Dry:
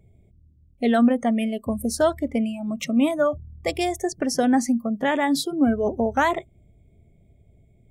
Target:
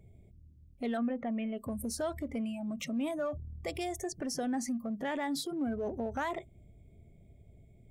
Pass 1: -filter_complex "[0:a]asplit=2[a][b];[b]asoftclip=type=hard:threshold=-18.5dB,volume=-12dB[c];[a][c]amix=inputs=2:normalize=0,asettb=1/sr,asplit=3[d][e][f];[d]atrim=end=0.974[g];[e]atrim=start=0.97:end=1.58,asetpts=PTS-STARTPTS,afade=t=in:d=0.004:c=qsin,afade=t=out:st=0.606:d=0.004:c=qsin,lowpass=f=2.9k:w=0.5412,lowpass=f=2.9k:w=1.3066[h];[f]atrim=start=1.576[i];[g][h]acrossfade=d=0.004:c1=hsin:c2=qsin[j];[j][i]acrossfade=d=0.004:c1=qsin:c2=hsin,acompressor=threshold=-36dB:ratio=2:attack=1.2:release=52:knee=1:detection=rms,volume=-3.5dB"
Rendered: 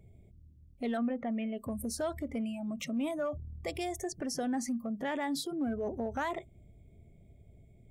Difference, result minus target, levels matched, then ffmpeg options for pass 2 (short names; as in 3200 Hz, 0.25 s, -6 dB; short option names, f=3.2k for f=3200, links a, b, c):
hard clip: distortion -6 dB
-filter_complex "[0:a]asplit=2[a][b];[b]asoftclip=type=hard:threshold=-25.5dB,volume=-12dB[c];[a][c]amix=inputs=2:normalize=0,asettb=1/sr,asplit=3[d][e][f];[d]atrim=end=0.974[g];[e]atrim=start=0.97:end=1.58,asetpts=PTS-STARTPTS,afade=t=in:d=0.004:c=qsin,afade=t=out:st=0.606:d=0.004:c=qsin,lowpass=f=2.9k:w=0.5412,lowpass=f=2.9k:w=1.3066[h];[f]atrim=start=1.576[i];[g][h]acrossfade=d=0.004:c1=hsin:c2=qsin[j];[j][i]acrossfade=d=0.004:c1=qsin:c2=hsin,acompressor=threshold=-36dB:ratio=2:attack=1.2:release=52:knee=1:detection=rms,volume=-3.5dB"